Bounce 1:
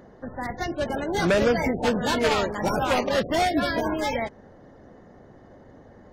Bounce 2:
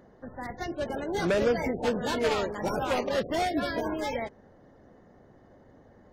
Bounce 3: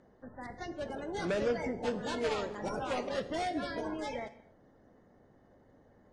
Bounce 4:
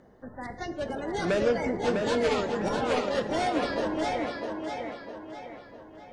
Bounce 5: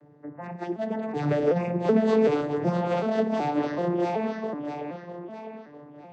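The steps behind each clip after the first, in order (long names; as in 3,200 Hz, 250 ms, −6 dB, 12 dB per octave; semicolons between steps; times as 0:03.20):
dynamic equaliser 430 Hz, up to +4 dB, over −36 dBFS, Q 1.7; level −6.5 dB
Butterworth low-pass 10,000 Hz 48 dB per octave; reverb whose tail is shaped and stops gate 280 ms falling, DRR 11.5 dB; level −7 dB
tape delay 653 ms, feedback 47%, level −3.5 dB, low-pass 5,600 Hz; level +6 dB
vocoder with an arpeggio as carrier minor triad, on D3, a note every 377 ms; level +4 dB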